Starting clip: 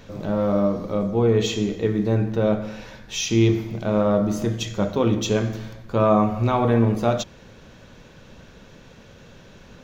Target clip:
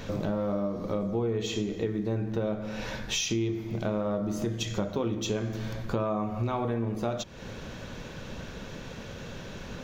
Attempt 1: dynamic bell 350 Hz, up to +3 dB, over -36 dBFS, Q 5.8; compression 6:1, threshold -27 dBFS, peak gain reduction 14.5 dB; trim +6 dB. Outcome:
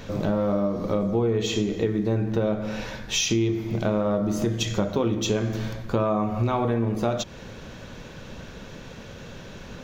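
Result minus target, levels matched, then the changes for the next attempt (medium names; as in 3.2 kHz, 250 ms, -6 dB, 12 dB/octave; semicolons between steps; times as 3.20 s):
compression: peak gain reduction -6 dB
change: compression 6:1, threshold -34 dBFS, peak gain reduction 20.5 dB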